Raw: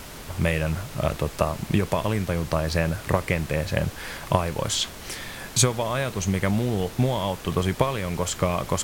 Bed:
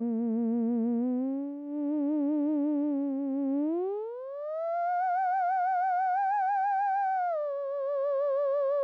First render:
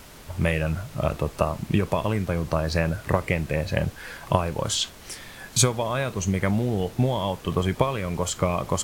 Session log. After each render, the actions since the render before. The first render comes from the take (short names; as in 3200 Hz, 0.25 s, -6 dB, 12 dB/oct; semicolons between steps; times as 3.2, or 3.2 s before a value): noise print and reduce 6 dB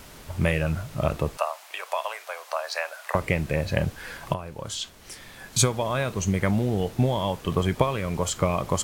1.37–3.15 steep high-pass 620 Hz; 4.34–5.91 fade in, from -12.5 dB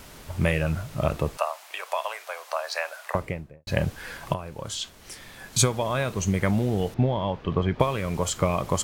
2.96–3.67 studio fade out; 6.94–7.8 air absorption 250 m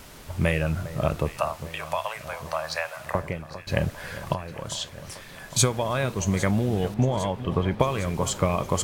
echo with dull and thin repeats by turns 0.403 s, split 1700 Hz, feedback 82%, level -14 dB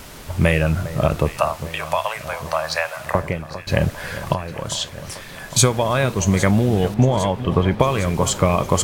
gain +7 dB; limiter -2 dBFS, peak gain reduction 3 dB